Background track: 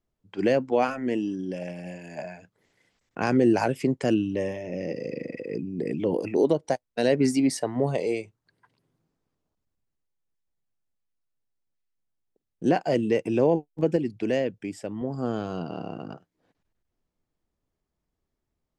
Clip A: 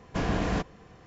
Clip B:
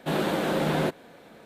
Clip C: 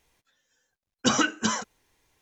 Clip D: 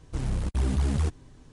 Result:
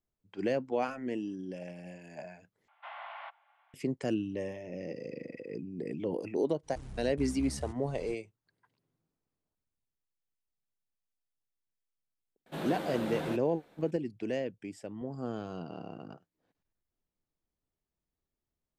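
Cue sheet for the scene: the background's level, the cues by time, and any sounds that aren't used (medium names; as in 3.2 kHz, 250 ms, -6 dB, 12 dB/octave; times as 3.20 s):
background track -8.5 dB
2.68 s: replace with A -12.5 dB + mistuned SSB +380 Hz 330–3000 Hz
6.63 s: add D -16.5 dB + recorder AGC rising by 78 dB/s
12.46 s: add B -11.5 dB
not used: C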